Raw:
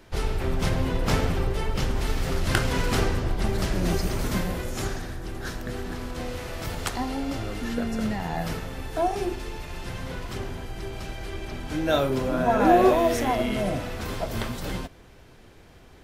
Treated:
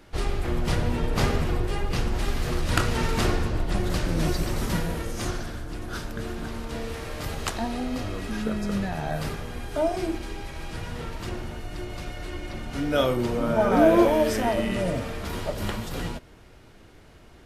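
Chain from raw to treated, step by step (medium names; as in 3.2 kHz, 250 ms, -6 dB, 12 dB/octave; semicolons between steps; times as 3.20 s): speed mistake 48 kHz file played as 44.1 kHz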